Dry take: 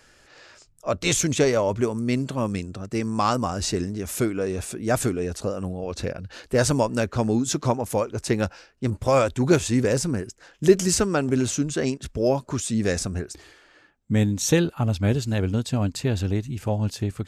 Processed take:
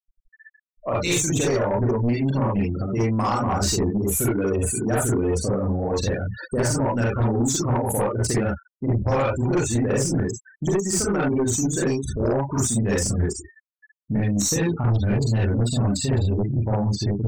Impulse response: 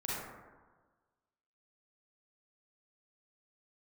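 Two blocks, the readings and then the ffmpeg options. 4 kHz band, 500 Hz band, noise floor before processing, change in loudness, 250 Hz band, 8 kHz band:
-0.5 dB, -0.5 dB, -56 dBFS, +1.5 dB, +1.0 dB, +3.0 dB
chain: -filter_complex "[0:a]crystalizer=i=1:c=0,acompressor=threshold=-25dB:ratio=5[a];[1:a]atrim=start_sample=2205,atrim=end_sample=4410[b];[a][b]afir=irnorm=-1:irlink=0,afftfilt=real='re*gte(hypot(re,im),0.0251)':imag='im*gte(hypot(re,im),0.0251)':win_size=1024:overlap=0.75,aeval=exprs='0.237*(cos(1*acos(clip(val(0)/0.237,-1,1)))-cos(1*PI/2))+0.0596*(cos(2*acos(clip(val(0)/0.237,-1,1)))-cos(2*PI/2))+0.0596*(cos(5*acos(clip(val(0)/0.237,-1,1)))-cos(5*PI/2))':c=same"

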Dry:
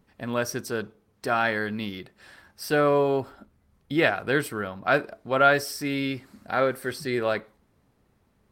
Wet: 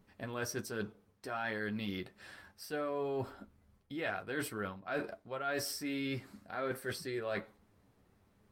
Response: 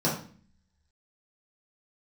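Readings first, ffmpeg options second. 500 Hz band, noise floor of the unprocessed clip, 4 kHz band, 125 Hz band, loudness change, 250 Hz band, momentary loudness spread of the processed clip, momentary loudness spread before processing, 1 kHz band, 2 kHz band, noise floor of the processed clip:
-13.5 dB, -67 dBFS, -10.0 dB, -11.0 dB, -13.5 dB, -11.0 dB, 12 LU, 13 LU, -15.5 dB, -13.0 dB, -71 dBFS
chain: -af "flanger=delay=9.6:depth=1.3:regen=-33:speed=1.3:shape=triangular,areverse,acompressor=threshold=-36dB:ratio=6,areverse,volume=1dB"

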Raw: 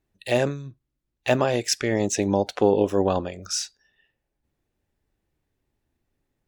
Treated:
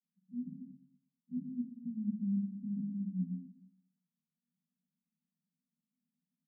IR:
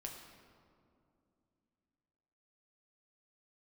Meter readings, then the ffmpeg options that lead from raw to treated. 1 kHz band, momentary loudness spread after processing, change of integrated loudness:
under -40 dB, 11 LU, -15.5 dB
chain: -filter_complex "[0:a]alimiter=limit=-12.5dB:level=0:latency=1,asuperpass=centerf=200:order=20:qfactor=1.9,aecho=1:1:119|238|357:0.211|0.0697|0.023[a];[1:a]atrim=start_sample=2205,afade=t=out:st=0.4:d=0.01,atrim=end_sample=18081,asetrate=61740,aresample=44100[b];[a][b]afir=irnorm=-1:irlink=0"

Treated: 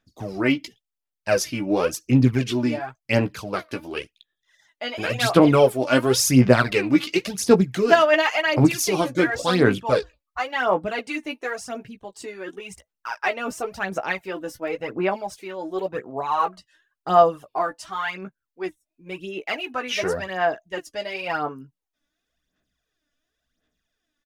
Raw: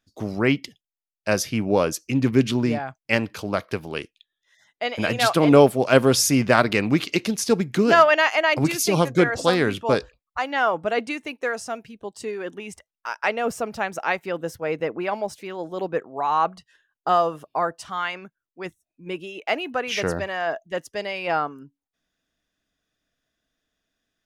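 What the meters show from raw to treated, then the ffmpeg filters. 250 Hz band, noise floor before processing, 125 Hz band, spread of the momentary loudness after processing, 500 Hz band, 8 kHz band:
+1.0 dB, under -85 dBFS, +2.0 dB, 17 LU, 0.0 dB, -0.5 dB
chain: -filter_complex "[0:a]asplit=2[a][b];[b]adelay=16,volume=-6.5dB[c];[a][c]amix=inputs=2:normalize=0,aphaser=in_gain=1:out_gain=1:delay=3.5:decay=0.62:speed=0.93:type=sinusoidal,volume=-3.5dB"

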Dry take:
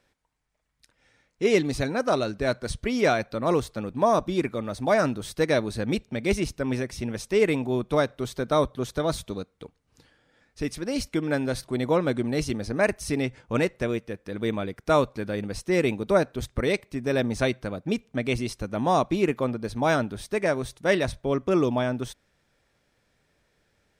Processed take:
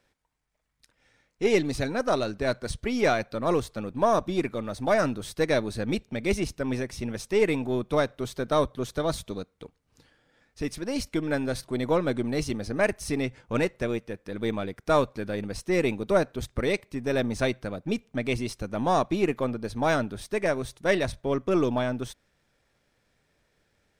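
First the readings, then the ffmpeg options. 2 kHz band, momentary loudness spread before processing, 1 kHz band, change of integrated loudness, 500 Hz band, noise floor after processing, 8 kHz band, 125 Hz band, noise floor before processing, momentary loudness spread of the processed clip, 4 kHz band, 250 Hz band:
-1.5 dB, 8 LU, -1.5 dB, -1.5 dB, -1.5 dB, -72 dBFS, -1.5 dB, -2.0 dB, -71 dBFS, 8 LU, -1.5 dB, -1.5 dB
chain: -af "aeval=exprs='if(lt(val(0),0),0.708*val(0),val(0))':c=same"

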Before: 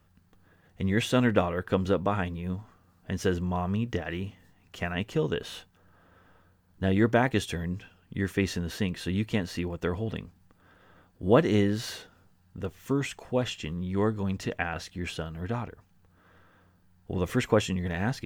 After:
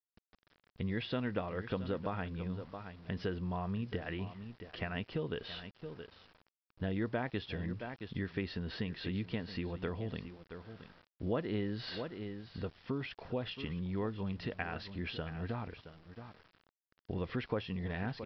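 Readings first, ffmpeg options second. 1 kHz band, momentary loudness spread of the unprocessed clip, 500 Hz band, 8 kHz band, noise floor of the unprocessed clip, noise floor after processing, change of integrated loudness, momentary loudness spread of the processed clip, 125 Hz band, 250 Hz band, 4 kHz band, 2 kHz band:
-10.5 dB, 13 LU, -11.0 dB, under -30 dB, -63 dBFS, under -85 dBFS, -10.5 dB, 12 LU, -8.5 dB, -9.5 dB, -8.0 dB, -9.5 dB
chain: -af "aecho=1:1:671:0.158,acompressor=threshold=-34dB:ratio=2.5,aresample=11025,aeval=exprs='val(0)*gte(abs(val(0)),0.00211)':c=same,aresample=44100,volume=-2.5dB"

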